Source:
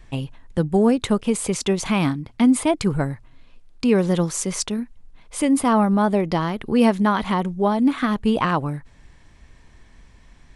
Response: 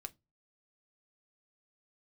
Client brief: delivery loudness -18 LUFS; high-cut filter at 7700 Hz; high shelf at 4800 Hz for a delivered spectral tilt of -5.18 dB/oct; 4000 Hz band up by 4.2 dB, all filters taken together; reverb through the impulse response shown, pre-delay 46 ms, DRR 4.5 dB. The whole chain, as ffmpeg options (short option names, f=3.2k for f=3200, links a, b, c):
-filter_complex "[0:a]lowpass=7.7k,equalizer=f=4k:t=o:g=3.5,highshelf=f=4.8k:g=5,asplit=2[a][b];[1:a]atrim=start_sample=2205,adelay=46[c];[b][c]afir=irnorm=-1:irlink=0,volume=0dB[d];[a][d]amix=inputs=2:normalize=0,volume=1dB"